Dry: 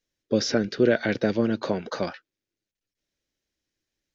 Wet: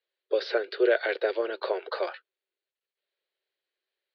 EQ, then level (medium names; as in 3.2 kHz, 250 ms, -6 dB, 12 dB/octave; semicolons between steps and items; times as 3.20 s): Chebyshev band-pass 380–4400 Hz, order 5; 0.0 dB